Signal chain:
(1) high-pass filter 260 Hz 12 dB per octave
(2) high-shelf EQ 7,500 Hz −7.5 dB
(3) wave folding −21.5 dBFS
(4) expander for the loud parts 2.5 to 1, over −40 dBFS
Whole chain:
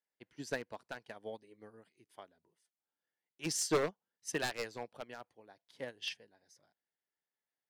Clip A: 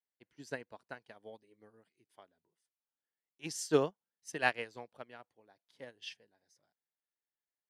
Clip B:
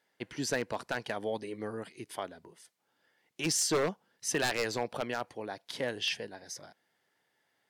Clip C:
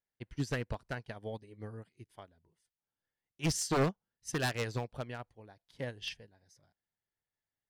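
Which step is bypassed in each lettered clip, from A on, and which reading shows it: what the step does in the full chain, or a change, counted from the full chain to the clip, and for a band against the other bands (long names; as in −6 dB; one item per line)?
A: 3, distortion level −6 dB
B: 4, change in crest factor −6.5 dB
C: 1, change in crest factor −3.5 dB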